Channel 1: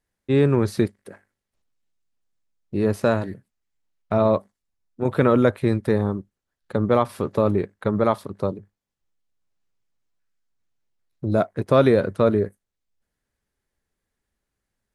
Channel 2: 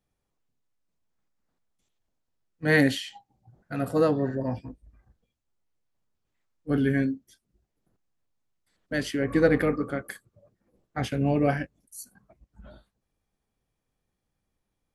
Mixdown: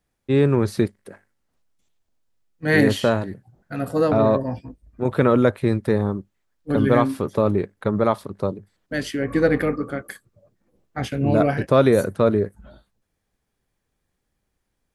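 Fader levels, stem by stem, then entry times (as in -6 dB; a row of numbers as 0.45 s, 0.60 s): +0.5 dB, +2.5 dB; 0.00 s, 0.00 s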